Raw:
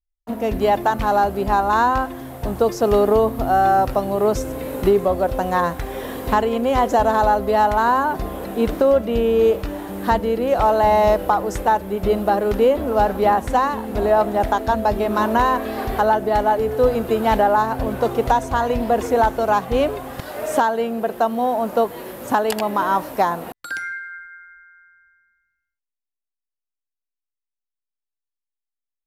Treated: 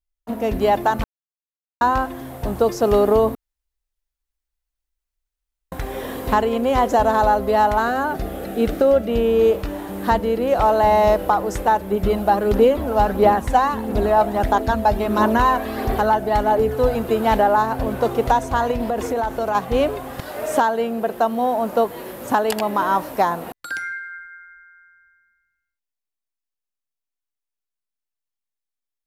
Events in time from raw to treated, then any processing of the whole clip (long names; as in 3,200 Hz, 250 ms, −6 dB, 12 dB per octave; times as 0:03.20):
0:01.04–0:01.81: silence
0:03.35–0:05.72: fill with room tone
0:07.79–0:09.10: Butterworth band-reject 1,000 Hz, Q 4.2
0:11.91–0:17.03: phase shifter 1.5 Hz, delay 1.4 ms, feedback 36%
0:18.71–0:19.55: downward compressor, threshold −18 dBFS